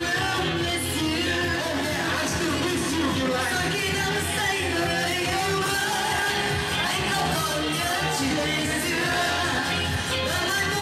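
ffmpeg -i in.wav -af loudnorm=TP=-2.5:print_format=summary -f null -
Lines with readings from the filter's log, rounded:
Input Integrated:    -23.8 LUFS
Input True Peak:     -13.1 dBTP
Input LRA:             0.6 LU
Input Threshold:     -33.8 LUFS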